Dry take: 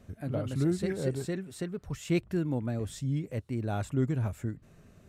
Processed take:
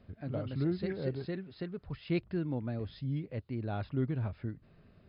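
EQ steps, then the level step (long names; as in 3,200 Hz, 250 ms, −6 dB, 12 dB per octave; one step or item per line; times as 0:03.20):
linear-phase brick-wall low-pass 5,200 Hz
−4.0 dB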